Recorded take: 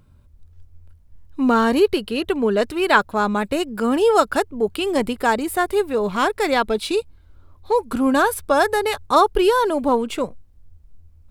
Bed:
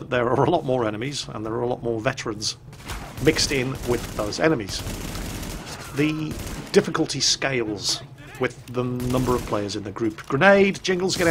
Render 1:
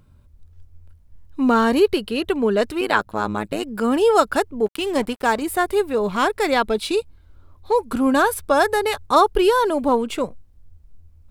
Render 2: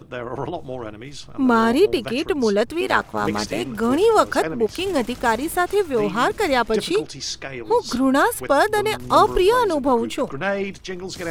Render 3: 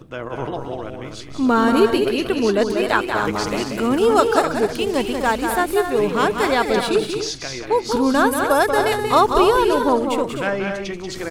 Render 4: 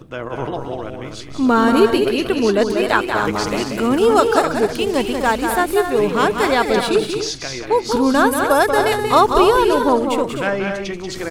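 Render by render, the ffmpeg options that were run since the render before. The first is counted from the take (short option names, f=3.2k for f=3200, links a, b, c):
-filter_complex "[0:a]asettb=1/sr,asplit=3[a][b][c];[a]atrim=end=2.814[d];[b]atrim=start=2.81:end=3.63,asetpts=PTS-STARTPTS,afade=t=in:d=0.004:c=qsin,afade=t=out:st=0.816:d=0.004:c=qsin,tremolo=f=110:d=0.889[e];[c]atrim=start=3.626[f];[d][e]acrossfade=d=0.004:c1=hsin:c2=qsin[g];[g][f]acrossfade=d=0.004:c1=qsin:c2=hsin,asettb=1/sr,asplit=3[h][i][j];[h]atrim=end=4.664[k];[i]atrim=start=4.66:end=5.42,asetpts=PTS-STARTPTS,afade=t=in:d=0.004:c=qsin,afade=t=out:st=0.756:d=0.004:c=qsin,aeval=exprs='sgn(val(0))*max(abs(val(0))-0.0178,0)':c=same[l];[j]atrim=start=5.416[m];[k][l]acrossfade=d=0.004:c1=hsin:c2=qsin[n];[n][m]acrossfade=d=0.004:c1=qsin:c2=hsin"
-filter_complex "[1:a]volume=-8.5dB[a];[0:a][a]amix=inputs=2:normalize=0"
-af "aecho=1:1:186|253|308:0.501|0.376|0.158"
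-af "volume=2dB,alimiter=limit=-1dB:level=0:latency=1"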